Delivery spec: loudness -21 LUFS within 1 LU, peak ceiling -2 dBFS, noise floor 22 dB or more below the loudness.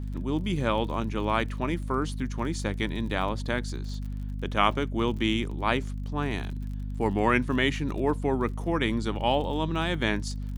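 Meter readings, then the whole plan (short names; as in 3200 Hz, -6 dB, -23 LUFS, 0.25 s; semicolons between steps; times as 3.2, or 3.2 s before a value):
ticks 36/s; hum 50 Hz; harmonics up to 250 Hz; hum level -31 dBFS; loudness -28.5 LUFS; peak -7.0 dBFS; loudness target -21.0 LUFS
-> de-click; de-hum 50 Hz, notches 5; gain +7.5 dB; limiter -2 dBFS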